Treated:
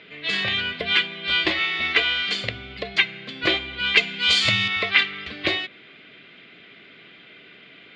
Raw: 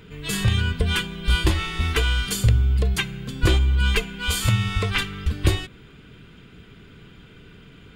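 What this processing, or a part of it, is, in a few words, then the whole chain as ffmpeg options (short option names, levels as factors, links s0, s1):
phone earpiece: -filter_complex "[0:a]asettb=1/sr,asplit=3[s0][s1][s2];[s0]atrim=end=3.974[s3];[s1]atrim=start=3.97:end=4.68,asetpts=PTS-STARTPTS,afade=t=in:d=0.004:c=qsin,afade=t=out:st=0.706:d=0.004:c=qsin,bass=f=250:g=7,treble=f=4000:g=13[s4];[s2]atrim=start=4.676[s5];[s3][s4]acrossfade=d=0.004:c1=hsin:c2=qsin[s6];[s6][s5]acrossfade=d=0.004:c1=qsin:c2=hsin,highpass=420,equalizer=f=450:t=q:w=4:g=-6,equalizer=f=640:t=q:w=4:g=5,equalizer=f=930:t=q:w=4:g=-9,equalizer=f=1400:t=q:w=4:g=-5,equalizer=f=2100:t=q:w=4:g=8,equalizer=f=4100:t=q:w=4:g=4,lowpass=f=4200:w=0.5412,lowpass=f=4200:w=1.3066,volume=1.68"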